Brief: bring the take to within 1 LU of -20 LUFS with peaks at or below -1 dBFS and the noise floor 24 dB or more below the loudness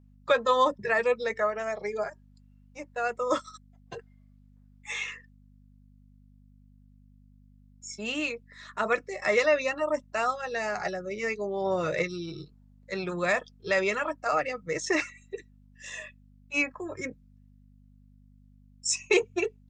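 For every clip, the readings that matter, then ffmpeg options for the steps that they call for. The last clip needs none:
hum 50 Hz; harmonics up to 250 Hz; hum level -55 dBFS; loudness -29.0 LUFS; peak -10.5 dBFS; loudness target -20.0 LUFS
-> -af "bandreject=f=50:t=h:w=4,bandreject=f=100:t=h:w=4,bandreject=f=150:t=h:w=4,bandreject=f=200:t=h:w=4,bandreject=f=250:t=h:w=4"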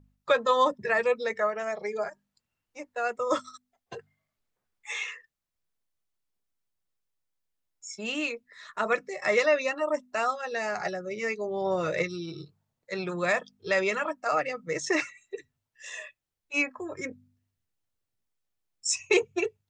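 hum none; loudness -29.0 LUFS; peak -10.5 dBFS; loudness target -20.0 LUFS
-> -af "volume=9dB"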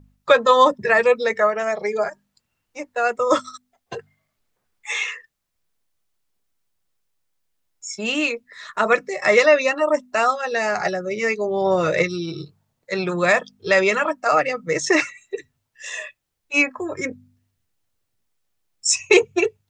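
loudness -20.0 LUFS; peak -1.5 dBFS; noise floor -76 dBFS

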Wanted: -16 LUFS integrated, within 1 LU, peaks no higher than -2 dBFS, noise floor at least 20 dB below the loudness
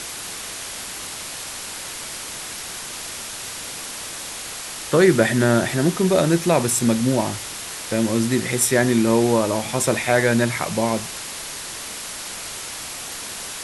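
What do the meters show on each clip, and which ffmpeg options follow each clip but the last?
noise floor -33 dBFS; noise floor target -42 dBFS; loudness -22.0 LUFS; peak -3.5 dBFS; loudness target -16.0 LUFS
-> -af "afftdn=nr=9:nf=-33"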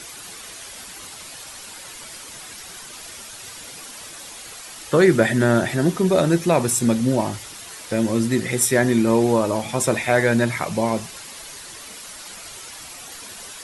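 noise floor -39 dBFS; noise floor target -40 dBFS
-> -af "afftdn=nr=6:nf=-39"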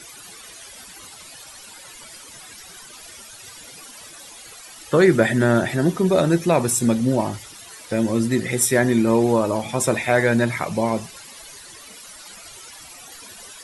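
noise floor -42 dBFS; loudness -19.5 LUFS; peak -4.0 dBFS; loudness target -16.0 LUFS
-> -af "volume=3.5dB,alimiter=limit=-2dB:level=0:latency=1"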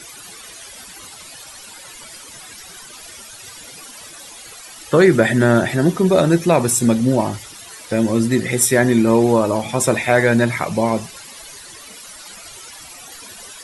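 loudness -16.0 LUFS; peak -2.0 dBFS; noise floor -39 dBFS

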